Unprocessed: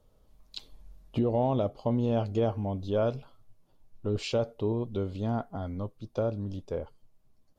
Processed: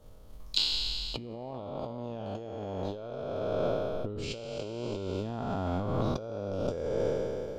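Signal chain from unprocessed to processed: spectral sustain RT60 2.89 s; compressor with a negative ratio -35 dBFS, ratio -1; transient shaper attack +4 dB, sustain -2 dB

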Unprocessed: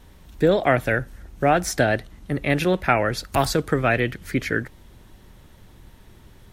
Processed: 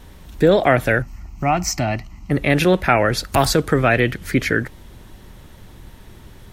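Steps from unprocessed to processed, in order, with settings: in parallel at +1 dB: peak limiter -14 dBFS, peak gain reduction 10 dB; 1.02–2.31 s: on the sum: static phaser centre 2.4 kHz, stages 8

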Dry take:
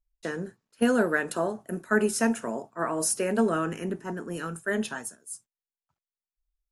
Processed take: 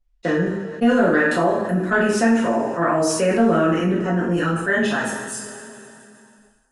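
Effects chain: expander -47 dBFS; treble shelf 6.2 kHz -5 dB; saturation -10.5 dBFS, distortion -27 dB; distance through air 83 m; two-slope reverb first 0.52 s, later 1.5 s, from -15 dB, DRR -6 dB; level flattener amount 50%; trim -1 dB

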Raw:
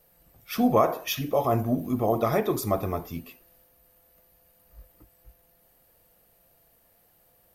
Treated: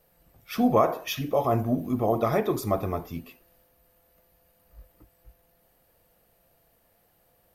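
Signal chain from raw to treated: treble shelf 5.5 kHz -5.5 dB

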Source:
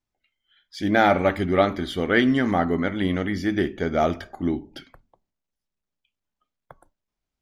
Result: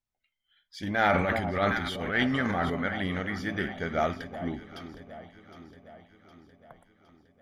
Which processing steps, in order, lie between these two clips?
echo whose repeats swap between lows and highs 381 ms, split 920 Hz, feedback 73%, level -11 dB; dynamic bell 1.7 kHz, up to +5 dB, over -36 dBFS, Q 1.1; 0.83–2.70 s: transient shaper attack -10 dB, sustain +8 dB; peaking EQ 330 Hz -7.5 dB 0.7 oct; trim -6 dB

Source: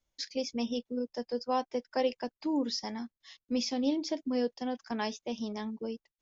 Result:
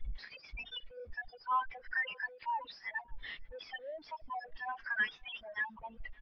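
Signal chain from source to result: 1.87–2.57 s: hum notches 50/100/150/200/250/300/350/400/450/500 Hz; spectral gate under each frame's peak -20 dB strong; inverse Chebyshev band-stop 180–460 Hz, stop band 80 dB; power-law waveshaper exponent 0.35; in parallel at +2 dB: compression 6:1, threshold -44 dBFS, peak gain reduction 15 dB; on the sum: tone controls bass 0 dB, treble -11 dB; bit crusher 9-bit; distance through air 300 m; on a send: delay 569 ms -19.5 dB; on the sum: spectral contrast expander 1.5:1; trim +3.5 dB

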